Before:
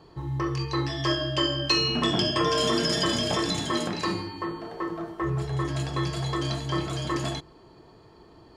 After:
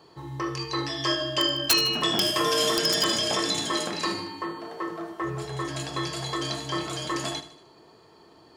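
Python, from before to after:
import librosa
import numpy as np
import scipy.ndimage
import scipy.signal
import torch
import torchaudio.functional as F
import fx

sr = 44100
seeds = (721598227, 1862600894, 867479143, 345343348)

y = fx.cvsd(x, sr, bps=64000, at=(2.21, 2.76))
y = fx.highpass(y, sr, hz=250.0, slope=6)
y = fx.high_shelf(y, sr, hz=3900.0, db=6.0)
y = fx.hum_notches(y, sr, base_hz=60, count=6)
y = (np.mod(10.0 ** (12.5 / 20.0) * y + 1.0, 2.0) - 1.0) / 10.0 ** (12.5 / 20.0)
y = fx.echo_feedback(y, sr, ms=77, feedback_pct=47, wet_db=-14.0)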